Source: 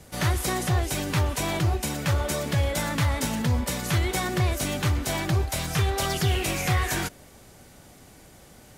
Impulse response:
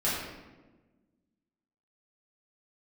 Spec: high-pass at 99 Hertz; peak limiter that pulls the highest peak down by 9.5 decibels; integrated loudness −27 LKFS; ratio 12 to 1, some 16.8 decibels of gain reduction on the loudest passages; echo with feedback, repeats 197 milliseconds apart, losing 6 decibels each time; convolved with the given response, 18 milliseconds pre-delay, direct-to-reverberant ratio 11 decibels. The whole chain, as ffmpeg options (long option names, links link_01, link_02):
-filter_complex "[0:a]highpass=99,acompressor=threshold=-38dB:ratio=12,alimiter=level_in=11.5dB:limit=-24dB:level=0:latency=1,volume=-11.5dB,aecho=1:1:197|394|591|788|985|1182:0.501|0.251|0.125|0.0626|0.0313|0.0157,asplit=2[link_01][link_02];[1:a]atrim=start_sample=2205,adelay=18[link_03];[link_02][link_03]afir=irnorm=-1:irlink=0,volume=-21dB[link_04];[link_01][link_04]amix=inputs=2:normalize=0,volume=16.5dB"